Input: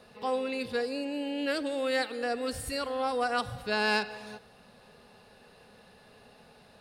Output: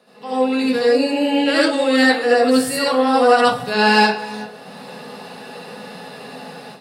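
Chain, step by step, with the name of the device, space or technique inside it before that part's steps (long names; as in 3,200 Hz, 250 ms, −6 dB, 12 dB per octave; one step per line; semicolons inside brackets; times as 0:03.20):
far laptop microphone (convolution reverb RT60 0.30 s, pre-delay 66 ms, DRR −6.5 dB; high-pass filter 150 Hz 24 dB per octave; automatic gain control gain up to 15 dB)
0:01.44–0:01.97: elliptic low-pass filter 11,000 Hz, stop band 40 dB
level −1 dB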